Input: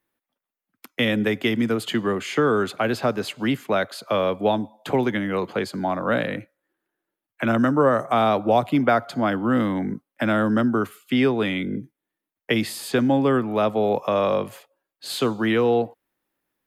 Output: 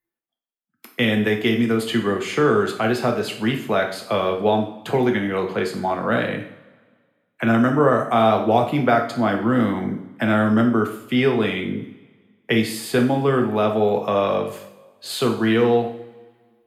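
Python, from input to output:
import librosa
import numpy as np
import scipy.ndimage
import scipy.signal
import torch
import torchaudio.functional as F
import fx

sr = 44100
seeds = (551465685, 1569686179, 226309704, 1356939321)

y = fx.noise_reduce_blind(x, sr, reduce_db=13)
y = fx.rev_double_slope(y, sr, seeds[0], early_s=0.53, late_s=1.7, knee_db=-18, drr_db=2.0)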